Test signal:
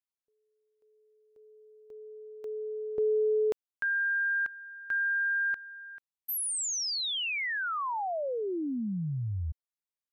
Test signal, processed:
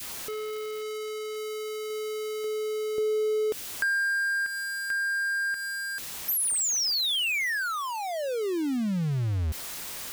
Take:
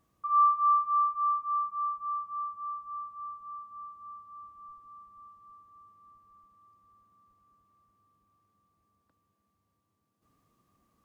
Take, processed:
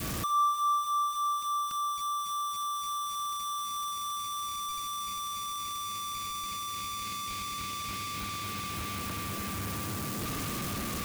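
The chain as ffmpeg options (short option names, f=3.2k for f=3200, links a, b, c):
-filter_complex "[0:a]aeval=exprs='val(0)+0.5*0.0282*sgn(val(0))':c=same,asplit=2[a][b];[b]acompressor=threshold=-33dB:ratio=6:attack=30:release=184:knee=1:detection=peak,volume=1dB[c];[a][c]amix=inputs=2:normalize=0,adynamicequalizer=threshold=0.01:dfrequency=910:dqfactor=0.93:tfrequency=910:tqfactor=0.93:attack=5:release=100:ratio=0.375:range=3.5:mode=cutabove:tftype=bell,acontrast=54,anlmdn=1,volume=-8.5dB"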